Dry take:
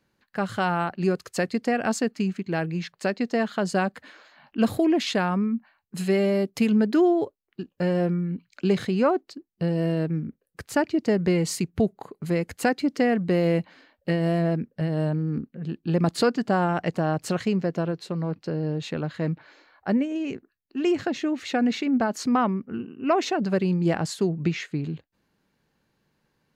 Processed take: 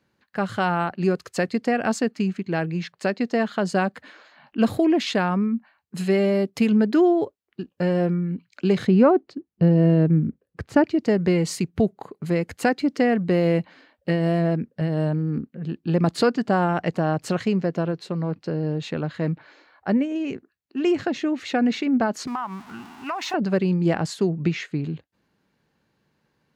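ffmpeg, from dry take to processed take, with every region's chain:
ffmpeg -i in.wav -filter_complex "[0:a]asettb=1/sr,asplit=3[link_01][link_02][link_03];[link_01]atrim=end=8.874[link_04];[link_02]atrim=start=8.87:end=10.84,asetpts=PTS-STARTPTS,afade=type=in:duration=0.004:curve=qsin,afade=type=out:start_time=1.966:duration=0.004:curve=qsin,lowpass=frequency=2600:poles=1,lowshelf=frequency=400:gain=8[link_05];[link_03]atrim=start=10.836[link_06];[link_04][link_05]acrossfade=duration=0.004:curve1=hsin:curve2=qsin[link_07];[link_07][link_06]acrossfade=duration=0.004:curve1=qsin:curve2=hsin,asettb=1/sr,asplit=3[link_08][link_09][link_10];[link_08]atrim=end=22.274[link_11];[link_09]atrim=start=22.27:end=23.34,asetpts=PTS-STARTPTS,afade=type=in:duration=0.004:curve=qsin,afade=type=out:start_time=1.066:duration=0.004:curve=qsin,aeval=exprs='val(0)+0.5*0.0133*sgn(val(0))':channel_layout=same,lowshelf=frequency=670:width_type=q:width=3:gain=-9.5,acompressor=threshold=-27dB:ratio=5:attack=3.2:release=140:knee=1:detection=peak[link_12];[link_10]atrim=start=23.336[link_13];[link_11][link_12]acrossfade=duration=0.004:curve1=hsin:curve2=qsin[link_14];[link_14][link_13]acrossfade=duration=0.004:curve1=qsin:curve2=hsin,highpass=53,highshelf=frequency=7600:gain=-7,volume=2dB" out.wav

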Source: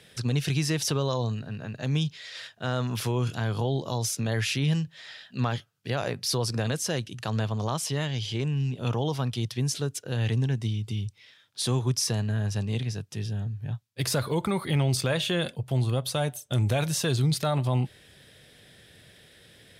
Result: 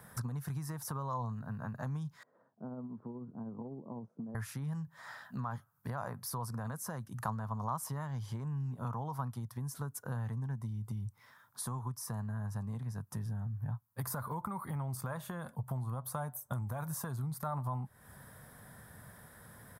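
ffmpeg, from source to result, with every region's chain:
ffmpeg -i in.wav -filter_complex "[0:a]asettb=1/sr,asplit=3[link_01][link_02][link_03];[link_01]atrim=end=2.234[link_04];[link_02]atrim=start=2.23:end=4.35,asetpts=PTS-STARTPTS,afade=type=in:duration=0.004:curve=qsin,afade=type=out:start_time=2.116:duration=0.004:curve=qsin,tremolo=f=16:d=0.29,asuperpass=centerf=300:order=4:qfactor=1.2[link_05];[link_03]atrim=start=4.346[link_06];[link_04][link_05]acrossfade=duration=0.004:curve1=hsin:curve2=qsin[link_07];[link_07][link_06]acrossfade=duration=0.004:curve1=qsin:curve2=hsin,equalizer=frequency=230:width_type=o:width=0.65:gain=9,acompressor=threshold=-35dB:ratio=12,firequalizer=gain_entry='entry(130,0);entry(250,-9);entry(350,-11);entry(1000,11);entry(2700,-22);entry(5300,-12);entry(13000,9)':delay=0.05:min_phase=1,volume=2dB" out.wav

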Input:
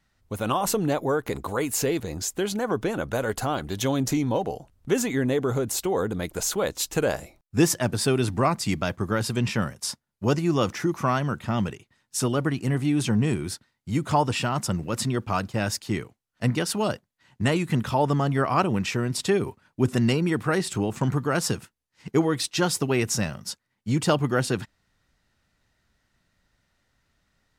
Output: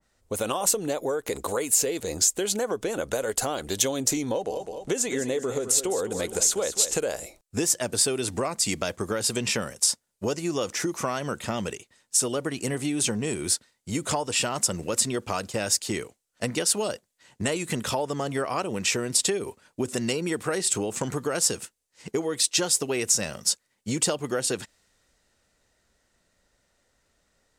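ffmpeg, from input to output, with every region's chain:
ffmpeg -i in.wav -filter_complex "[0:a]asettb=1/sr,asplit=3[link_01][link_02][link_03];[link_01]atrim=end=4.314[link_04];[link_02]atrim=start=4.31:end=7,asetpts=PTS-STARTPTS,afade=type=in:duration=0.004:curve=qsin,afade=type=out:start_time=2.686:duration=0.004:curve=qsin,lowpass=11000,aecho=1:1:207|414|621|828:0.251|0.105|0.0443|0.0186,atrim=end_sample=118629[link_05];[link_03]atrim=start=6.996[link_06];[link_04][link_05]acrossfade=duration=0.004:curve1=hsin:curve2=qsin[link_07];[link_07][link_06]acrossfade=duration=0.004:curve1=qsin:curve2=hsin,equalizer=frequency=125:width_type=o:width=1:gain=-5,equalizer=frequency=500:width_type=o:width=1:gain=9,equalizer=frequency=8000:width_type=o:width=1:gain=10,acompressor=threshold=-24dB:ratio=6,adynamicequalizer=threshold=0.00447:dfrequency=1700:dqfactor=0.7:tfrequency=1700:tqfactor=0.7:attack=5:release=100:ratio=0.375:range=3.5:mode=boostabove:tftype=highshelf,volume=-1dB" out.wav

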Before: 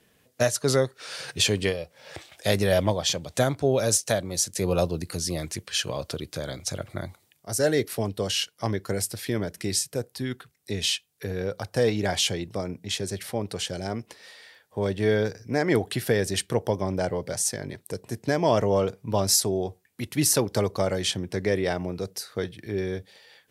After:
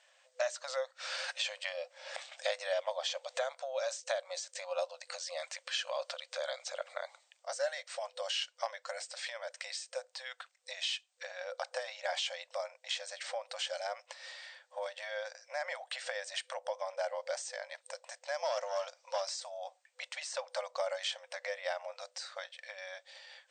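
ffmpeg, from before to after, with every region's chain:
ffmpeg -i in.wav -filter_complex "[0:a]asettb=1/sr,asplit=3[link_01][link_02][link_03];[link_01]atrim=end=18.344[link_04];[link_02]atrim=start=18.34:end=19.29,asetpts=PTS-STARTPTS,afade=type=in:duration=0.004:curve=qsin,afade=type=out:start_time=0.946:duration=0.004:curve=qsin,equalizer=frequency=5400:width_type=o:width=0.65:gain=11.5,aeval=exprs='clip(val(0),-1,0.119)':channel_layout=same[link_05];[link_03]atrim=start=19.286[link_06];[link_04][link_05]acrossfade=duration=0.004:curve1=hsin:curve2=qsin[link_07];[link_07][link_06]acrossfade=duration=0.004:curve1=qsin:curve2=hsin,acompressor=threshold=-29dB:ratio=5,afftfilt=real='re*between(b*sr/4096,500,8700)':imag='im*between(b*sr/4096,500,8700)':win_size=4096:overlap=0.75,acrossover=split=3900[link_08][link_09];[link_09]acompressor=threshold=-43dB:ratio=4:attack=1:release=60[link_10];[link_08][link_10]amix=inputs=2:normalize=0" out.wav

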